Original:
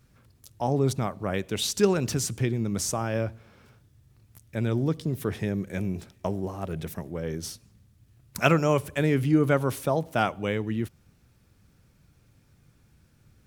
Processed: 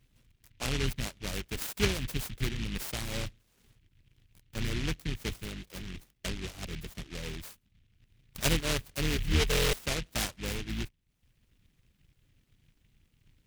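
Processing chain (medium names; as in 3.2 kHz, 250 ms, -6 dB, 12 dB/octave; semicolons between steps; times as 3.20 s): octave divider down 2 oct, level +2 dB; 9.16–9.86 s: rippled EQ curve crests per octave 0.85, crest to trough 12 dB; reverb removal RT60 0.61 s; 5.40–5.94 s: bass shelf 380 Hz -7.5 dB; buffer glitch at 9.50 s, samples 1024, times 9; delay time shaken by noise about 2.5 kHz, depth 0.32 ms; trim -8 dB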